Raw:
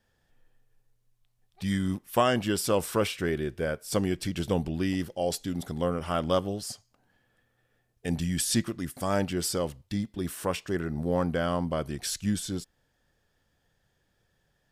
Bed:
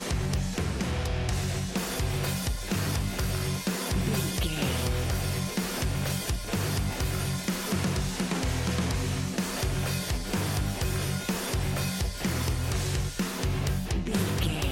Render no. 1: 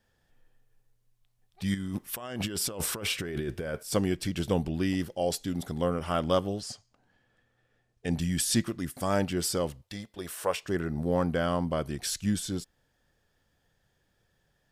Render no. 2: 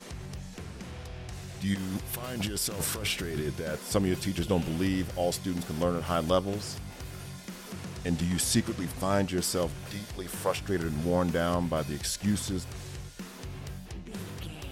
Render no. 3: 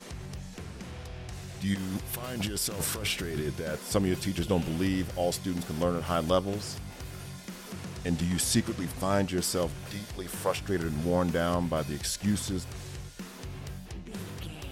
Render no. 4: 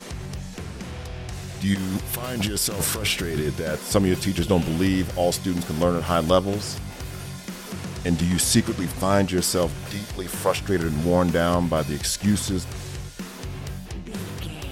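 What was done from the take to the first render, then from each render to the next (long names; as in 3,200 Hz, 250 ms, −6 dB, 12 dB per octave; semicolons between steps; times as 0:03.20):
0:01.74–0:03.83: compressor whose output falls as the input rises −34 dBFS; 0:06.60–0:08.16: low-pass filter 7,700 Hz; 0:09.83–0:10.63: low shelf with overshoot 370 Hz −9 dB, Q 1.5
mix in bed −12 dB
no processing that can be heard
level +7 dB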